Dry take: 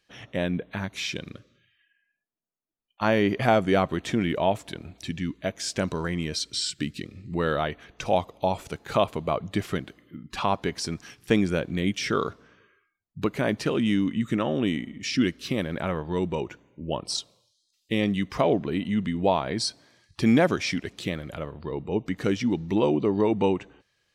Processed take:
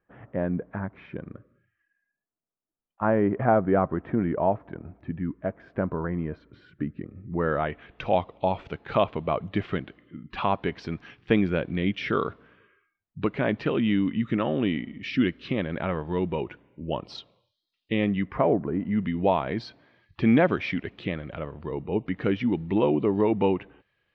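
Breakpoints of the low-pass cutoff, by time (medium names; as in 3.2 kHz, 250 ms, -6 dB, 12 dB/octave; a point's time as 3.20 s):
low-pass 24 dB/octave
7.32 s 1.5 kHz
7.86 s 3.2 kHz
17.92 s 3.2 kHz
18.77 s 1.4 kHz
19.10 s 3 kHz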